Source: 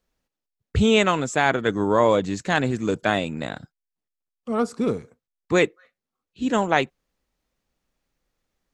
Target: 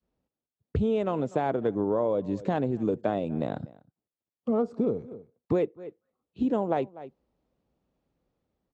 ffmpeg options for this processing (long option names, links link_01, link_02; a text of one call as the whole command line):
ffmpeg -i in.wav -filter_complex "[0:a]acrossover=split=1600[link_01][link_02];[link_01]adynamicequalizer=threshold=0.0316:dfrequency=540:dqfactor=0.8:tfrequency=540:tqfactor=0.8:attack=5:release=100:ratio=0.375:range=3:mode=boostabove:tftype=bell[link_03];[link_02]acrusher=bits=3:mode=log:mix=0:aa=0.000001[link_04];[link_03][link_04]amix=inputs=2:normalize=0,lowpass=2300,equalizer=frequency=1800:width_type=o:width=1.7:gain=-13.5,dynaudnorm=framelen=690:gausssize=3:maxgain=3.5dB,asplit=2[link_05][link_06];[link_06]adelay=244.9,volume=-26dB,highshelf=frequency=4000:gain=-5.51[link_07];[link_05][link_07]amix=inputs=2:normalize=0,acompressor=threshold=-27dB:ratio=6,highpass=67,volume=3dB" out.wav